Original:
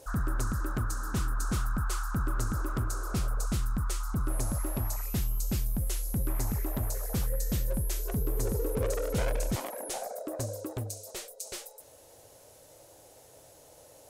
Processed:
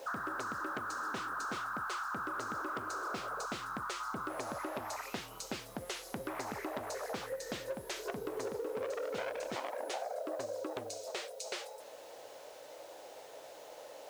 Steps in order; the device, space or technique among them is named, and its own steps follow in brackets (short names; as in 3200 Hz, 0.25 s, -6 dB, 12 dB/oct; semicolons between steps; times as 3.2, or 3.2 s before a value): baby monitor (BPF 460–3800 Hz; compressor, threshold -44 dBFS, peak gain reduction 12 dB; white noise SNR 24 dB); gain +8 dB